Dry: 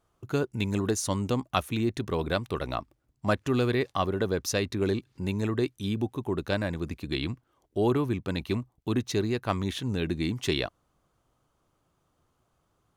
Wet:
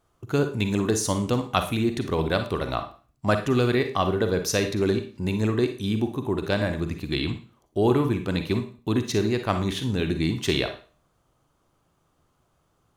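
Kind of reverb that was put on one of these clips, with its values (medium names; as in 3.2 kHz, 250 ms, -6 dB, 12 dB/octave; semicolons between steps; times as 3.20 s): Schroeder reverb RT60 0.38 s, DRR 7 dB; trim +3.5 dB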